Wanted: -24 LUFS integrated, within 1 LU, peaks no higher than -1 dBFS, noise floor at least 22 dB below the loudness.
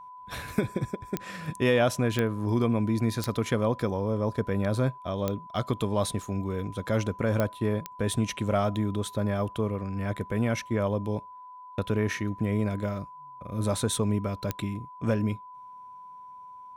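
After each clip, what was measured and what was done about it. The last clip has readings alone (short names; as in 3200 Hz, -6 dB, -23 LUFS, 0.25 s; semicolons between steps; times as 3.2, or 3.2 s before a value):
clicks 7; steady tone 1000 Hz; tone level -43 dBFS; loudness -29.0 LUFS; peak -11.5 dBFS; loudness target -24.0 LUFS
-> de-click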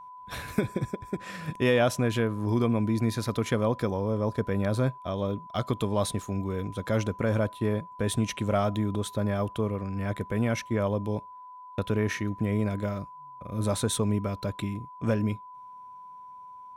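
clicks 0; steady tone 1000 Hz; tone level -43 dBFS
-> notch 1000 Hz, Q 30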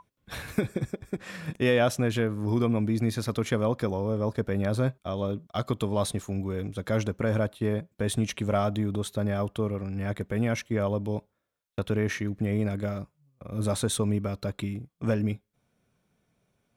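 steady tone none; loudness -29.0 LUFS; peak -12.5 dBFS; loudness target -24.0 LUFS
-> gain +5 dB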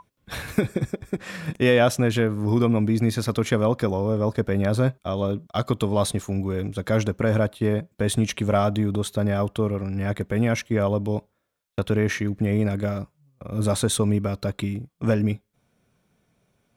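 loudness -24.0 LUFS; peak -7.5 dBFS; noise floor -72 dBFS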